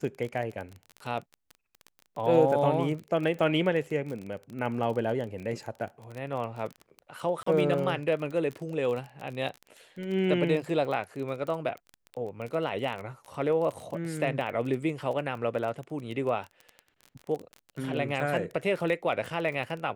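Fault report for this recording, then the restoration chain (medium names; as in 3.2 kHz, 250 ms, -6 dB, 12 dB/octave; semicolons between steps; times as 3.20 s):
crackle 27 per s -34 dBFS
7.43–7.46 s: dropout 34 ms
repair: de-click; interpolate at 7.43 s, 34 ms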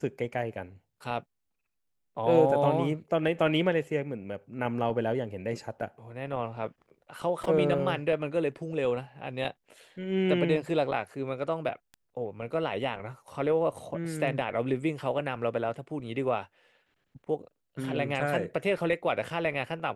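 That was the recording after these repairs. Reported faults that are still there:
nothing left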